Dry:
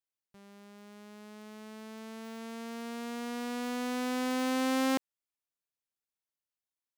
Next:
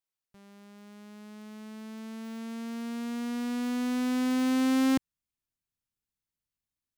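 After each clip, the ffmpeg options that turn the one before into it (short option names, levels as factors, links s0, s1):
-af "asubboost=boost=6:cutoff=220"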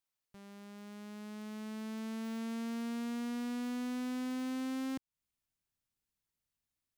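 -af "acompressor=threshold=0.0178:ratio=12,volume=1.12"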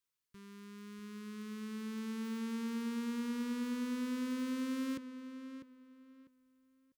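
-filter_complex "[0:a]asuperstop=centerf=700:order=20:qfactor=2,asplit=2[s0][s1];[s1]adelay=648,lowpass=f=3300:p=1,volume=0.316,asplit=2[s2][s3];[s3]adelay=648,lowpass=f=3300:p=1,volume=0.26,asplit=2[s4][s5];[s5]adelay=648,lowpass=f=3300:p=1,volume=0.26[s6];[s2][s4][s6]amix=inputs=3:normalize=0[s7];[s0][s7]amix=inputs=2:normalize=0"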